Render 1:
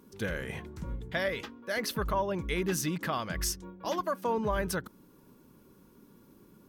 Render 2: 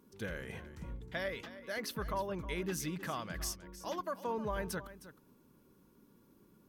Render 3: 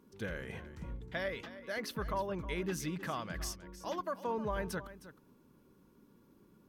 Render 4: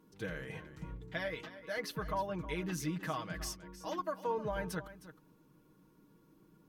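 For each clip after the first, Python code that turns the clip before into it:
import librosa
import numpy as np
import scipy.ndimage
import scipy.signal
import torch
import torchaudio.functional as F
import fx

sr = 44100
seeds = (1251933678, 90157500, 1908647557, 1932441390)

y1 = x + 10.0 ** (-14.5 / 20.0) * np.pad(x, (int(312 * sr / 1000.0), 0))[:len(x)]
y1 = y1 * librosa.db_to_amplitude(-7.0)
y2 = fx.high_shelf(y1, sr, hz=6400.0, db=-6.5)
y2 = y2 * librosa.db_to_amplitude(1.0)
y3 = y2 + 0.65 * np.pad(y2, (int(6.4 * sr / 1000.0), 0))[:len(y2)]
y3 = y3 * librosa.db_to_amplitude(-2.0)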